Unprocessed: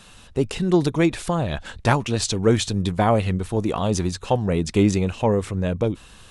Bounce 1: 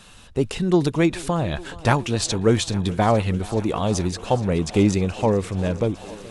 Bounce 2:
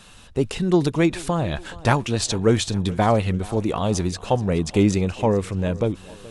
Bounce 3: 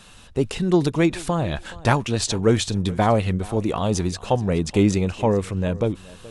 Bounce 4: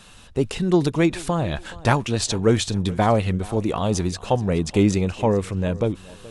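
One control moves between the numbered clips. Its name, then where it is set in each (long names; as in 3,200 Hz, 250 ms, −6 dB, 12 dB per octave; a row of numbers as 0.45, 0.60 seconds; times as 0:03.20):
feedback echo with a high-pass in the loop, feedback: 85, 49, 15, 30%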